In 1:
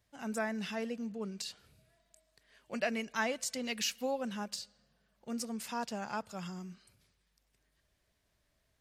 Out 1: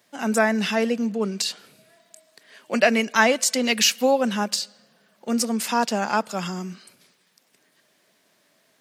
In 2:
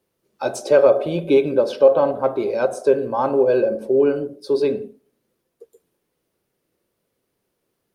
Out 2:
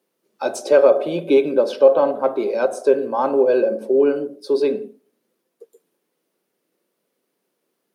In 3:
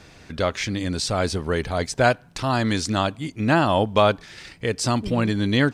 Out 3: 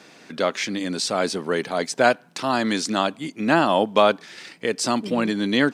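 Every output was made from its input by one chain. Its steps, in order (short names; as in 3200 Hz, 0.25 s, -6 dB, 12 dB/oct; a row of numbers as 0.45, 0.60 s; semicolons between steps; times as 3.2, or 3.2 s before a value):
HPF 190 Hz 24 dB/oct; normalise peaks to -2 dBFS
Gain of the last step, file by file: +15.5, +0.5, +1.0 dB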